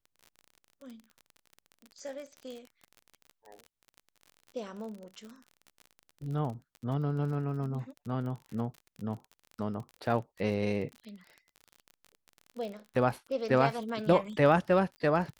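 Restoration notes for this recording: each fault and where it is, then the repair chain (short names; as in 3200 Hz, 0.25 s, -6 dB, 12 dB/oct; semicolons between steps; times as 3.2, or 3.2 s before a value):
crackle 40/s -39 dBFS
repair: de-click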